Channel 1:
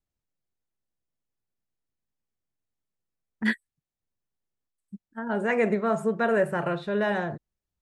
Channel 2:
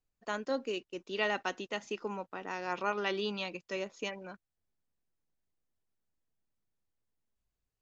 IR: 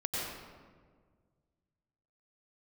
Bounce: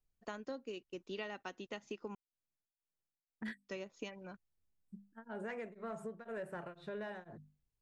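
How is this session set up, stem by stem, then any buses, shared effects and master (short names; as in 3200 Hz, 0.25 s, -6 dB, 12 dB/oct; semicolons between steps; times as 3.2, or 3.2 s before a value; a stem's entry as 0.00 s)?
-8.0 dB, 0.00 s, no send, notches 50/100/150/200/250 Hz; soft clip -16 dBFS, distortion -21 dB; beating tremolo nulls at 2 Hz
+1.5 dB, 0.00 s, muted 2.15–3.67, no send, low shelf 210 Hz +10 dB; upward expander 1.5:1, over -44 dBFS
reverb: off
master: compressor 6:1, threshold -41 dBFS, peak gain reduction 15.5 dB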